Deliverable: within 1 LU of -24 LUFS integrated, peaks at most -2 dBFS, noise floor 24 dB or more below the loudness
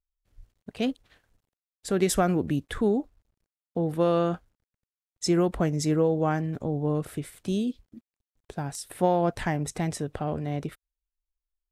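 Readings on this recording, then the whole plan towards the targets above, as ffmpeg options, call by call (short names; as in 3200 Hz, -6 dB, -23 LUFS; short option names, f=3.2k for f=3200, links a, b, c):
loudness -27.5 LUFS; peak -10.0 dBFS; loudness target -24.0 LUFS
-> -af "volume=3.5dB"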